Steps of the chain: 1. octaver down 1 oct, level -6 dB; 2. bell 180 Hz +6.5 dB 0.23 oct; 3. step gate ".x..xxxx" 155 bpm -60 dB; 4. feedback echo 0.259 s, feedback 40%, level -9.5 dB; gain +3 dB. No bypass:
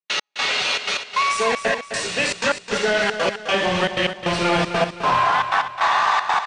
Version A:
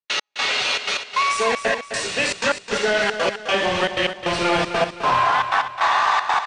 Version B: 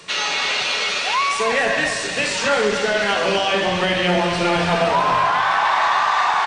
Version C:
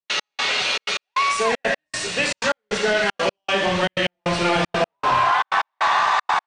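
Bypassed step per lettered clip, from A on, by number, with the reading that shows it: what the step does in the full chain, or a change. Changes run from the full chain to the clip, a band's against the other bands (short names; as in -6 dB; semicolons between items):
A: 2, 125 Hz band -4.0 dB; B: 3, momentary loudness spread change -2 LU; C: 4, echo-to-direct -8.5 dB to none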